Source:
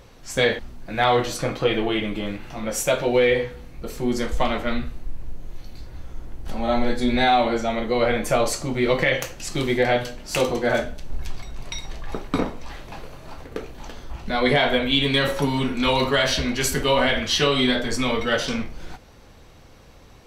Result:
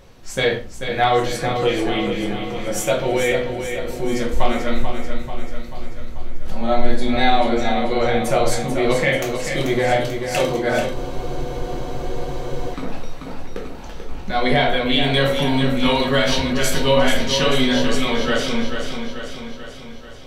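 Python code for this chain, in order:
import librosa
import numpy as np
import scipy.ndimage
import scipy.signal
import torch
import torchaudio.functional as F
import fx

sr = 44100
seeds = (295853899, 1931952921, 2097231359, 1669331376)

y = fx.echo_feedback(x, sr, ms=438, feedback_pct=58, wet_db=-7.5)
y = fx.room_shoebox(y, sr, seeds[0], volume_m3=160.0, walls='furnished', distance_m=1.0)
y = fx.spec_freeze(y, sr, seeds[1], at_s=10.97, hold_s=1.77)
y = y * librosa.db_to_amplitude(-1.0)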